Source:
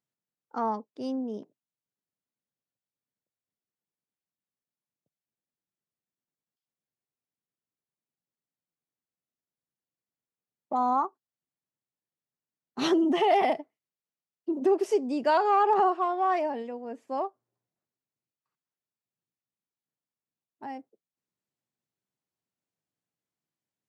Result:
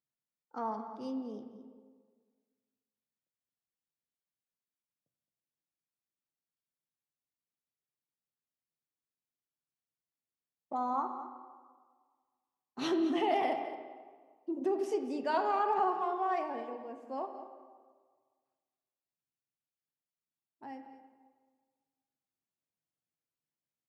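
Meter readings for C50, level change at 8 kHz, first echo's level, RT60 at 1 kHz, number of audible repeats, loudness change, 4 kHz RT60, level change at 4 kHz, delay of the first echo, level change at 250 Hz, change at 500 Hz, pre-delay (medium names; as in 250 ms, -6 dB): 7.0 dB, no reading, -14.0 dB, 1.6 s, 1, -7.5 dB, 1.1 s, -7.0 dB, 217 ms, -6.0 dB, -7.5 dB, 3 ms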